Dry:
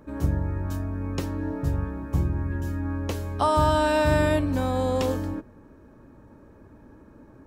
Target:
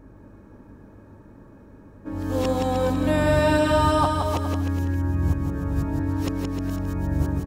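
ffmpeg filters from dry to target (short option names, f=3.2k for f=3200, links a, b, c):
-af "areverse,aeval=exprs='val(0)+0.00355*(sin(2*PI*50*n/s)+sin(2*PI*2*50*n/s)/2+sin(2*PI*3*50*n/s)/3+sin(2*PI*4*50*n/s)/4+sin(2*PI*5*50*n/s)/5)':c=same,aecho=1:1:170|306|414.8|501.8|571.5:0.631|0.398|0.251|0.158|0.1"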